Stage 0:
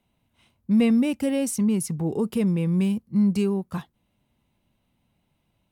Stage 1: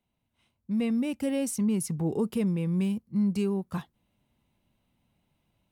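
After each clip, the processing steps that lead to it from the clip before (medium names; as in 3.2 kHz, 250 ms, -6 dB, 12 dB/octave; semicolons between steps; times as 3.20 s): gain riding 0.5 s; trim -5 dB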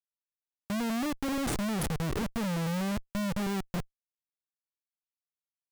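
Schmitt trigger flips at -30 dBFS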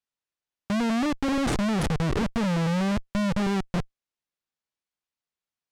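distance through air 63 m; trim +6.5 dB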